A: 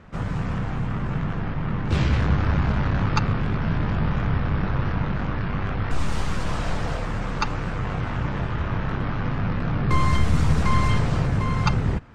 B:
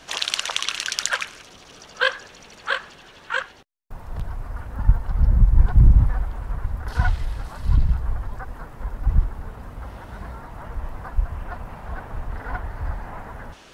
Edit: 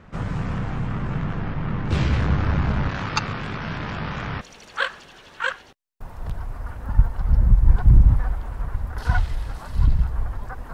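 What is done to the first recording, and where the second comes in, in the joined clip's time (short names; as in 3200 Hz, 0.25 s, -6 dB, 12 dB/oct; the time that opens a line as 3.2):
A
2.89–4.41 tilt +2.5 dB/oct
4.41 switch to B from 2.31 s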